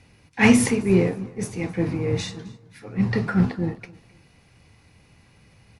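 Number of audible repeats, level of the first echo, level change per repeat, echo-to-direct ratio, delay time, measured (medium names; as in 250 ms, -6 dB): 2, -23.0 dB, -10.5 dB, -22.5 dB, 261 ms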